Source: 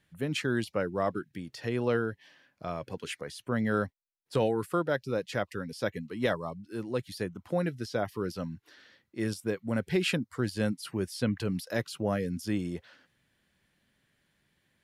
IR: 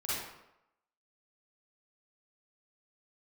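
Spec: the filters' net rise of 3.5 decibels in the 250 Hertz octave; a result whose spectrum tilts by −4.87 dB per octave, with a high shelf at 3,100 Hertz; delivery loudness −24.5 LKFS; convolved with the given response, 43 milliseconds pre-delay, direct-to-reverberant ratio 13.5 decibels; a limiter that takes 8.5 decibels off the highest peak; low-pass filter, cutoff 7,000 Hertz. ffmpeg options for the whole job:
-filter_complex "[0:a]lowpass=7000,equalizer=frequency=250:width_type=o:gain=4.5,highshelf=frequency=3100:gain=8,alimiter=limit=-22dB:level=0:latency=1,asplit=2[link_01][link_02];[1:a]atrim=start_sample=2205,adelay=43[link_03];[link_02][link_03]afir=irnorm=-1:irlink=0,volume=-18.5dB[link_04];[link_01][link_04]amix=inputs=2:normalize=0,volume=9.5dB"

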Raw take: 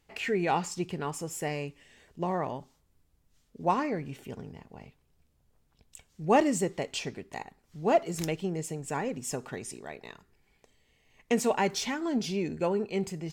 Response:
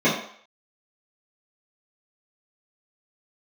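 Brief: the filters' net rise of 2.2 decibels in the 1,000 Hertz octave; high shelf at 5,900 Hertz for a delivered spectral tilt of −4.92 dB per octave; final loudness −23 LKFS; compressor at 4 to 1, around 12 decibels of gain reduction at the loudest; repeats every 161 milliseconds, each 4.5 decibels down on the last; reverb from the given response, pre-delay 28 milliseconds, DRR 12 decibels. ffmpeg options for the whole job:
-filter_complex "[0:a]equalizer=frequency=1000:width_type=o:gain=3,highshelf=frequency=5900:gain=-4,acompressor=threshold=-31dB:ratio=4,aecho=1:1:161|322|483|644|805|966|1127|1288|1449:0.596|0.357|0.214|0.129|0.0772|0.0463|0.0278|0.0167|0.01,asplit=2[link_01][link_02];[1:a]atrim=start_sample=2205,adelay=28[link_03];[link_02][link_03]afir=irnorm=-1:irlink=0,volume=-31.5dB[link_04];[link_01][link_04]amix=inputs=2:normalize=0,volume=11.5dB"

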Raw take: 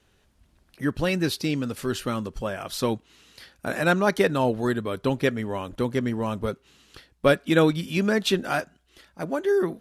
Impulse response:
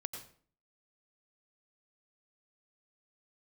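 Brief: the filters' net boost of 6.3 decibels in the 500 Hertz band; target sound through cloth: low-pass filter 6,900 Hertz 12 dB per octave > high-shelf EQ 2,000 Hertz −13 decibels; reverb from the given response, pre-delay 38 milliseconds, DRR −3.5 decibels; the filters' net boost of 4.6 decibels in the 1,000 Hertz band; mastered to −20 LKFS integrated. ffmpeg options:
-filter_complex "[0:a]equalizer=frequency=500:width_type=o:gain=7,equalizer=frequency=1000:width_type=o:gain=7,asplit=2[link_01][link_02];[1:a]atrim=start_sample=2205,adelay=38[link_03];[link_02][link_03]afir=irnorm=-1:irlink=0,volume=4.5dB[link_04];[link_01][link_04]amix=inputs=2:normalize=0,lowpass=6900,highshelf=frequency=2000:gain=-13,volume=-3.5dB"

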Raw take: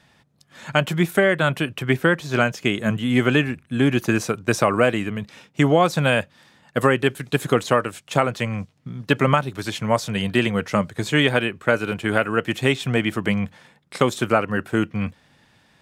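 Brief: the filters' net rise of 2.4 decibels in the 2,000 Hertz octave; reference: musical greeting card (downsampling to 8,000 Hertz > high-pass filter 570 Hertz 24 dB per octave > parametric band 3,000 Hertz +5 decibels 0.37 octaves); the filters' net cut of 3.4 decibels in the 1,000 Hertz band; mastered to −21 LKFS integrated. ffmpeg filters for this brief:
ffmpeg -i in.wav -af "equalizer=frequency=1000:width_type=o:gain=-6.5,equalizer=frequency=2000:width_type=o:gain=4.5,aresample=8000,aresample=44100,highpass=frequency=570:width=0.5412,highpass=frequency=570:width=1.3066,equalizer=frequency=3000:width_type=o:width=0.37:gain=5,volume=2.5dB" out.wav

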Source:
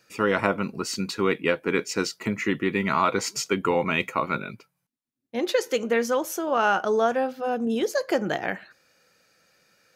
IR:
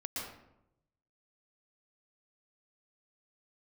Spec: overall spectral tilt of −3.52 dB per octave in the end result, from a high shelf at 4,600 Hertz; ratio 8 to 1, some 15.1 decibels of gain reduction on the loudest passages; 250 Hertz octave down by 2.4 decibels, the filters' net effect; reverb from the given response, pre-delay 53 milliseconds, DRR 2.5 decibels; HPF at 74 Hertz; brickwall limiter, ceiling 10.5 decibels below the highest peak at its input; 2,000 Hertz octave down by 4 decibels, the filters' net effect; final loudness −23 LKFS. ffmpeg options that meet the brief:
-filter_complex "[0:a]highpass=74,equalizer=frequency=250:width_type=o:gain=-3,equalizer=frequency=2000:width_type=o:gain=-7,highshelf=frequency=4600:gain=8,acompressor=threshold=-35dB:ratio=8,alimiter=level_in=7dB:limit=-24dB:level=0:latency=1,volume=-7dB,asplit=2[link_01][link_02];[1:a]atrim=start_sample=2205,adelay=53[link_03];[link_02][link_03]afir=irnorm=-1:irlink=0,volume=-4dB[link_04];[link_01][link_04]amix=inputs=2:normalize=0,volume=16.5dB"

